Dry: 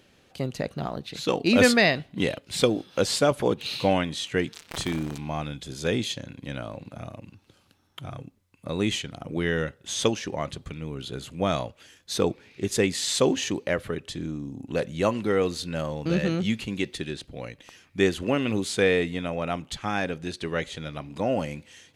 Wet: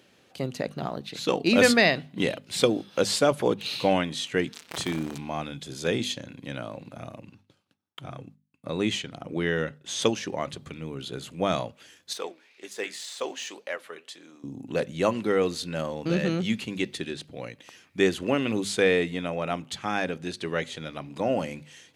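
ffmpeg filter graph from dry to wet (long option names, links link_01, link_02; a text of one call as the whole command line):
ffmpeg -i in.wav -filter_complex "[0:a]asettb=1/sr,asplit=3[link_01][link_02][link_03];[link_01]atrim=end=7.224[link_04];[link_02]atrim=start=7.22:end=10.02,asetpts=PTS-STARTPTS,afade=type=in:duration=0.004:curve=qsin,afade=type=out:start_time=2.796:duration=0.004:curve=qsin,agate=range=-33dB:threshold=-55dB:ratio=3:release=100:detection=peak,highshelf=frequency=9200:gain=-8[link_05];[link_03]atrim=start=10.016[link_06];[link_04][link_05]acrossfade=duration=0.004:curve1=hsin:curve2=qsin[link_07];[link_07][link_06]acrossfade=duration=0.004:curve1=qsin:curve2=hsin,asettb=1/sr,asplit=3[link_08][link_09][link_10];[link_08]atrim=end=12.134[link_11];[link_09]atrim=start=12.13:end=14.44,asetpts=PTS-STARTPTS,afade=type=in:duration=0.004:curve=qsin,afade=type=out:start_time=2.306:duration=0.004:curve=qsin,deesser=0.65,highpass=630,flanger=delay=3.5:depth=9.4:regen=73:speed=1.9:shape=sinusoidal[link_12];[link_10]atrim=start=14.436[link_13];[link_11][link_12]acrossfade=duration=0.004:curve1=hsin:curve2=qsin[link_14];[link_14][link_13]acrossfade=duration=0.004:curve1=qsin:curve2=hsin,highpass=120,bandreject=frequency=50:width_type=h:width=6,bandreject=frequency=100:width_type=h:width=6,bandreject=frequency=150:width_type=h:width=6,bandreject=frequency=200:width_type=h:width=6,bandreject=frequency=250:width_type=h:width=6" out.wav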